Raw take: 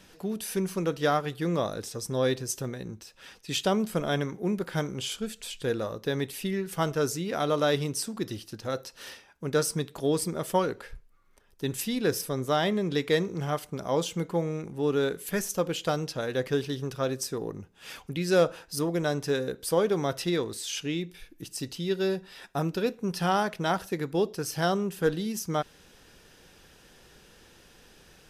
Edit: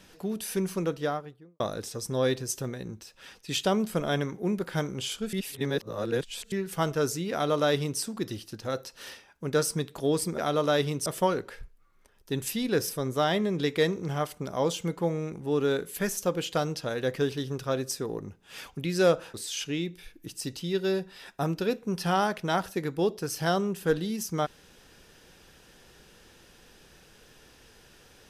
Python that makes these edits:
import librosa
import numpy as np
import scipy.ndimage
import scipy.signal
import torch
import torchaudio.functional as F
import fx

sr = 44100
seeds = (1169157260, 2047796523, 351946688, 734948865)

y = fx.studio_fade_out(x, sr, start_s=0.71, length_s=0.89)
y = fx.edit(y, sr, fx.reverse_span(start_s=5.33, length_s=1.19),
    fx.duplicate(start_s=7.32, length_s=0.68, to_s=10.38),
    fx.cut(start_s=18.66, length_s=1.84), tone=tone)